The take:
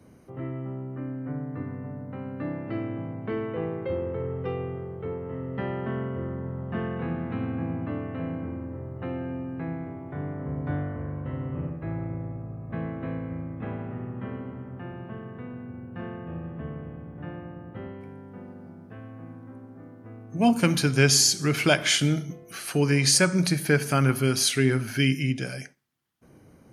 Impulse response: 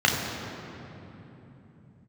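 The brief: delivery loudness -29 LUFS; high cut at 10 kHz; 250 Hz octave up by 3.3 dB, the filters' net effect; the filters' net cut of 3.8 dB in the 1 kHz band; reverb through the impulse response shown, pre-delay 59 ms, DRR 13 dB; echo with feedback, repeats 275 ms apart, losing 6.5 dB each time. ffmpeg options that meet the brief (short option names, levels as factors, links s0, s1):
-filter_complex "[0:a]lowpass=10000,equalizer=f=250:t=o:g=4.5,equalizer=f=1000:t=o:g=-6.5,aecho=1:1:275|550|825|1100|1375|1650:0.473|0.222|0.105|0.0491|0.0231|0.0109,asplit=2[s0][s1];[1:a]atrim=start_sample=2205,adelay=59[s2];[s1][s2]afir=irnorm=-1:irlink=0,volume=0.0282[s3];[s0][s3]amix=inputs=2:normalize=0,volume=0.631"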